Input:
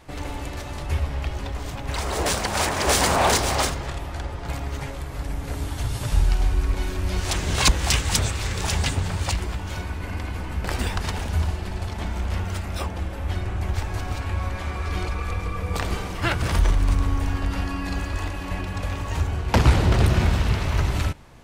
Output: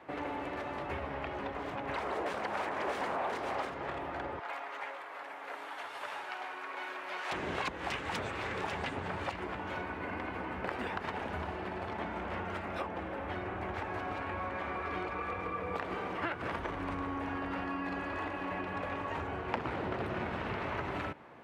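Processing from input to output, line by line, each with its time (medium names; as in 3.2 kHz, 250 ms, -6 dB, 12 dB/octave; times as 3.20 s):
4.39–7.32 s: high-pass 800 Hz
whole clip: high-pass 100 Hz 12 dB/octave; three-band isolator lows -14 dB, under 240 Hz, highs -24 dB, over 2.6 kHz; compression 6:1, threshold -33 dBFS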